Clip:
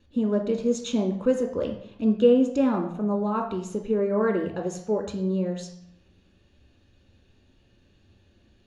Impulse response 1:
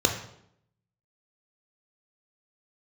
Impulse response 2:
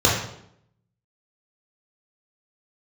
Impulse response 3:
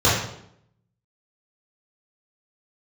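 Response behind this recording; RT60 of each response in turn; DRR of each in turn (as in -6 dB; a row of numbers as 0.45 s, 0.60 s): 1; 0.70 s, 0.70 s, 0.70 s; 3.0 dB, -5.0 dB, -10.5 dB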